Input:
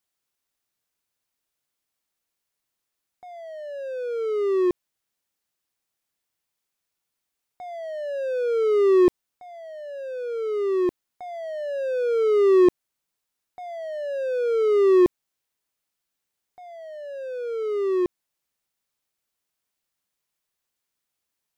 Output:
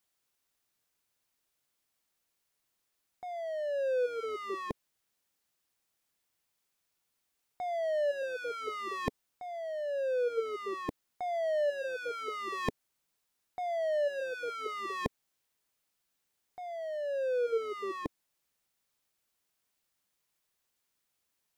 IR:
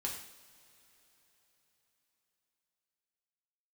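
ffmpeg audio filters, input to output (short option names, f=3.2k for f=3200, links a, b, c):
-af "aeval=exprs='0.398*(cos(1*acos(clip(val(0)/0.398,-1,1)))-cos(1*PI/2))+0.0126*(cos(5*acos(clip(val(0)/0.398,-1,1)))-cos(5*PI/2))':c=same,afftfilt=real='re*lt(hypot(re,im),0.562)':imag='im*lt(hypot(re,im),0.562)':win_size=1024:overlap=0.75"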